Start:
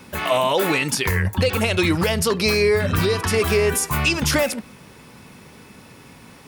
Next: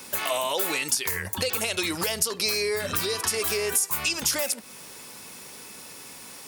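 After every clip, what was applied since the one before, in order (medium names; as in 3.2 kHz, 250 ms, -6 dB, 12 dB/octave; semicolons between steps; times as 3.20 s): tone controls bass -12 dB, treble +13 dB; compression 2.5:1, threshold -26 dBFS, peak gain reduction 13.5 dB; trim -1 dB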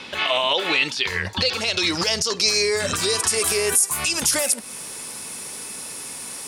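peak limiter -18.5 dBFS, peak gain reduction 9 dB; low-pass sweep 3.3 kHz -> 10 kHz, 0.68–3.62 s; trim +6 dB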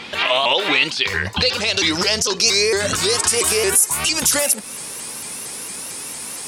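vibrato with a chosen wave saw up 4.4 Hz, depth 160 cents; trim +3.5 dB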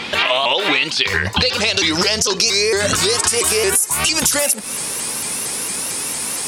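compression, threshold -20 dBFS, peak gain reduction 10 dB; trim +7 dB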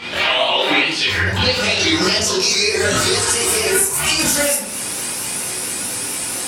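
reverberation RT60 0.60 s, pre-delay 17 ms, DRR -9.5 dB; trim -9 dB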